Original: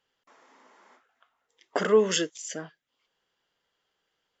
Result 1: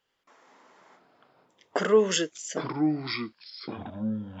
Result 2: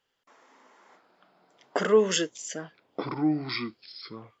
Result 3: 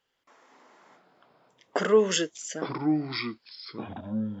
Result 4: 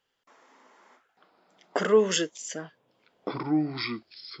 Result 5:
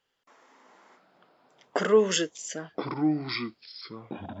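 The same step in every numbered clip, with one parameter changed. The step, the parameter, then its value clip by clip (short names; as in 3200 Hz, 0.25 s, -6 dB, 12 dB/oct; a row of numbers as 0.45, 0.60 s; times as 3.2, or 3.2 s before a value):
echoes that change speed, time: 81, 500, 134, 785, 297 ms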